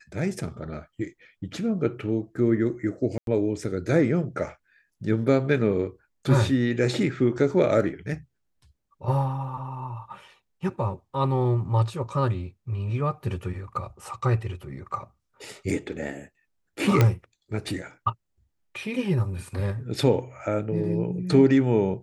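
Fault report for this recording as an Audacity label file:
3.180000	3.270000	gap 92 ms
17.010000	17.010000	pop -7 dBFS

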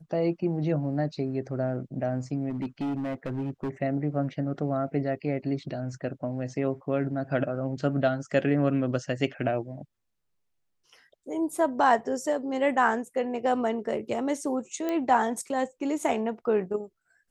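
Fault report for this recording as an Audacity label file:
2.500000	3.690000	clipped -27 dBFS
14.890000	14.890000	pop -17 dBFS

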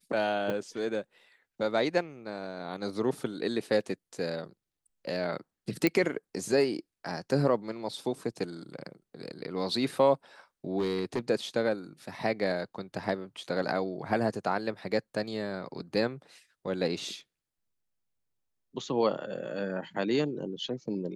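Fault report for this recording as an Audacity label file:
0.500000	0.500000	pop -20 dBFS
5.870000	5.870000	pop -12 dBFS
10.780000	11.200000	clipped -25 dBFS

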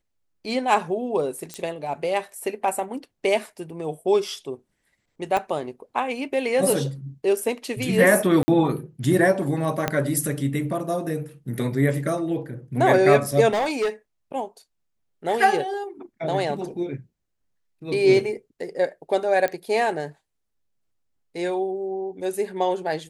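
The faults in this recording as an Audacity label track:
1.540000	1.540000	pop -16 dBFS
5.370000	5.370000	pop -12 dBFS
8.430000	8.480000	gap 50 ms
9.880000	9.880000	pop -7 dBFS
13.490000	13.890000	clipped -19 dBFS
19.480000	19.480000	pop -12 dBFS

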